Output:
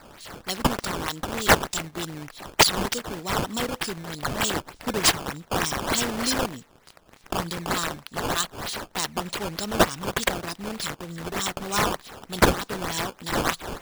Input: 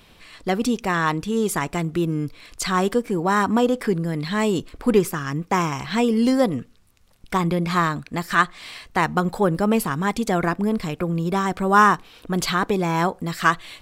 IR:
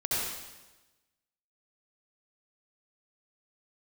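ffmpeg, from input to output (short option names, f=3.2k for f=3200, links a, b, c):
-filter_complex "[0:a]asettb=1/sr,asplit=3[a][b][c];[a]atrim=end=5.814[d];[b]atrim=start=5.81:end=6.45,asetpts=PTS-STARTPTS,afade=t=in:d=0.004:c=qsin,afade=t=out:st=0.636:d=0.004:c=qsin,aeval=exprs='val(0)+0.5*0.0282*sgn(val(0))':c=same[e];[c]atrim=start=6.446[f];[d][e]acrossfade=d=0.004:c1=hsin:c2=qsin[g];[g][f]acrossfade=d=0.004:c1=qsin:c2=hsin,aexciter=amount=14:drive=7.8:freq=3.4k,acrusher=samples=13:mix=1:aa=0.000001:lfo=1:lforange=20.8:lforate=3.3,volume=-13.5dB"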